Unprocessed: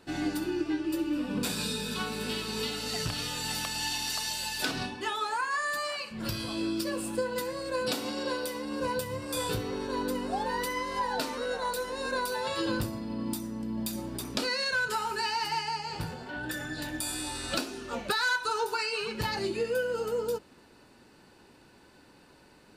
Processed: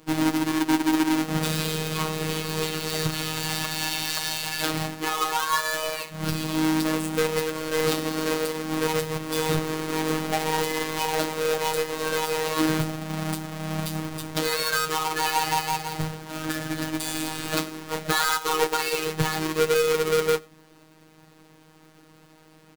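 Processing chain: half-waves squared off; in parallel at +1.5 dB: limiter -24.5 dBFS, peak gain reduction 8 dB; on the sum: harmoniser -3 st -6 dB; robotiser 157 Hz; on a send: echo 94 ms -22 dB; on the sum: upward expander 1.5:1, over -31 dBFS

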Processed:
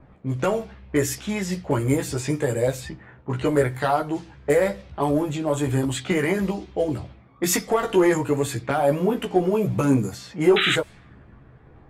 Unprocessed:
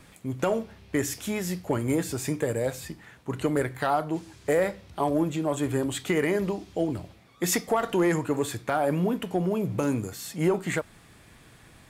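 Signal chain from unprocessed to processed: chorus voices 4, 0.39 Hz, delay 15 ms, depth 1.3 ms; painted sound noise, 10.56–10.76, 1200–4000 Hz -28 dBFS; low-pass opened by the level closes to 890 Hz, open at -27 dBFS; gain +7 dB

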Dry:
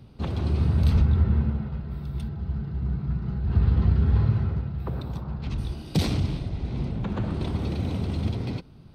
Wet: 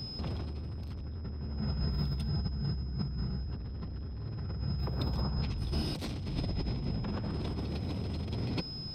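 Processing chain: soft clip -22.5 dBFS, distortion -9 dB; whine 5100 Hz -47 dBFS; negative-ratio compressor -35 dBFS, ratio -1

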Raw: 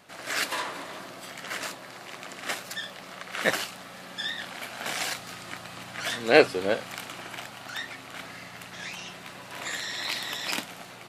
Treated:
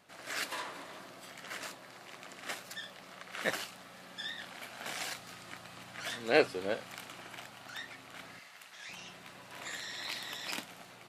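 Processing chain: 8.39–8.89 HPF 1100 Hz 6 dB/oct; gain -8.5 dB

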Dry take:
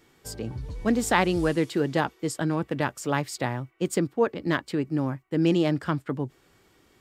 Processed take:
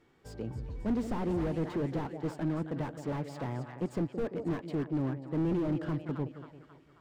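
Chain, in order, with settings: LPF 1800 Hz 6 dB/oct; split-band echo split 730 Hz, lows 0.171 s, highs 0.269 s, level -13 dB; slew limiter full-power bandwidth 22 Hz; gain -4.5 dB

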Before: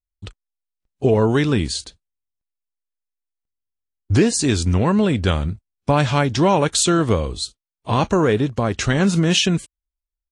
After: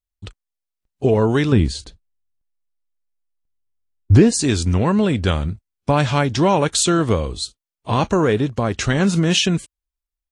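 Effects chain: 1.52–4.32 tilt -2 dB/oct

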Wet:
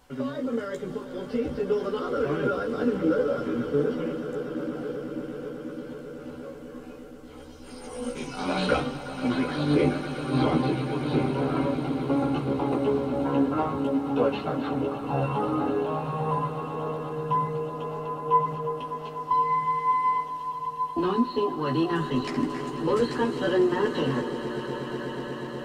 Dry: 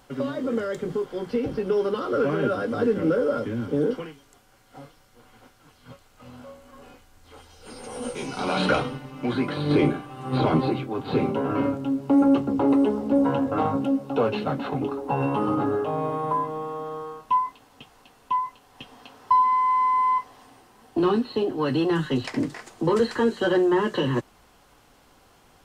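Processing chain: swelling echo 0.122 s, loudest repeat 8, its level -16 dB; chorus voices 6, 0.45 Hz, delay 14 ms, depth 2.3 ms

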